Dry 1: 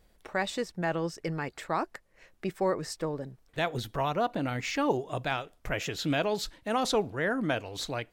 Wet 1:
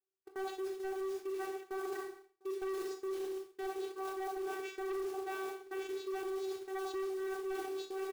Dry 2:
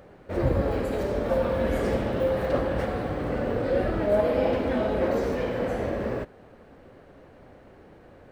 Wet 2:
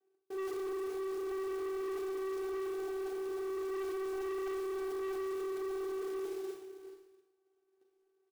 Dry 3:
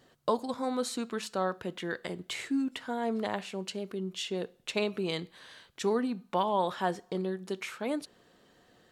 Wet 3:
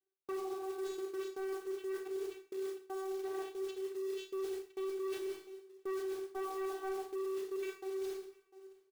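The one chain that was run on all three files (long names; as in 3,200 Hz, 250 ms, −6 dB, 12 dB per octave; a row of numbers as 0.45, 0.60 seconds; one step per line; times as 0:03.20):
mains-hum notches 50/100/150/200/250/300 Hz
on a send: echo with shifted repeats 137 ms, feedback 49%, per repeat −45 Hz, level −14 dB
on the sum: channel vocoder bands 16, saw 383 Hz
parametric band 490 Hz +4.5 dB 2.4 octaves
noise gate −40 dBFS, range −33 dB
slap from a distant wall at 120 metres, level −29 dB
floating-point word with a short mantissa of 2 bits
four-comb reverb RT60 0.56 s, combs from 28 ms, DRR 2.5 dB
hard clipping −23.5 dBFS
reversed playback
downward compressor 10 to 1, threshold −40 dBFS
reversed playback
level +2.5 dB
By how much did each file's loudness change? −8.5, −11.5, −7.0 LU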